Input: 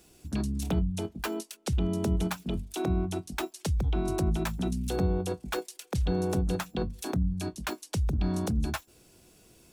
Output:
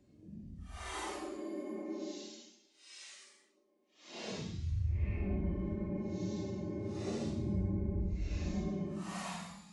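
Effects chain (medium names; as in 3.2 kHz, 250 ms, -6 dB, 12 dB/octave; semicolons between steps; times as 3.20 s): frequency axis rescaled in octaves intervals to 87%; Paulstretch 7.7×, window 0.05 s, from 1.12 s; trim -8 dB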